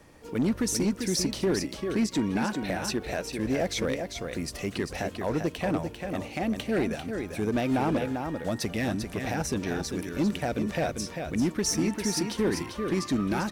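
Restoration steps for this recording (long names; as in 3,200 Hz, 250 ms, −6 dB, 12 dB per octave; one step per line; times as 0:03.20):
clipped peaks rebuilt −20 dBFS
echo removal 395 ms −6.5 dB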